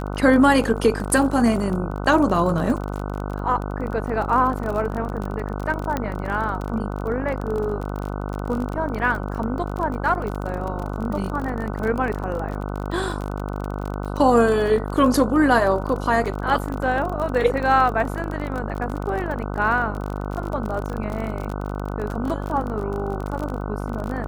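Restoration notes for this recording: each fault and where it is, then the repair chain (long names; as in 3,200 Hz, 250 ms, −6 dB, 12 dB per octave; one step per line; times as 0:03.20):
mains buzz 50 Hz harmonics 30 −28 dBFS
surface crackle 34 per second −27 dBFS
0:05.97: click −11 dBFS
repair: click removal
hum removal 50 Hz, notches 30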